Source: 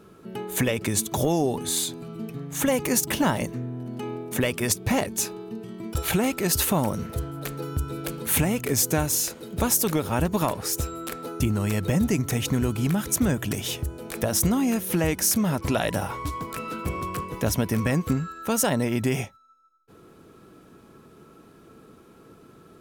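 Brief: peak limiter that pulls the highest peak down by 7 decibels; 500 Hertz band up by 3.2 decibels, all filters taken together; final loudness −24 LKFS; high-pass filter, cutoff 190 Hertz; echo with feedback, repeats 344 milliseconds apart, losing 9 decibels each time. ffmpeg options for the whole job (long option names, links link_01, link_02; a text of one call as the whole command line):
ffmpeg -i in.wav -af "highpass=190,equalizer=frequency=500:width_type=o:gain=4,alimiter=limit=-15dB:level=0:latency=1,aecho=1:1:344|688|1032|1376:0.355|0.124|0.0435|0.0152,volume=3dB" out.wav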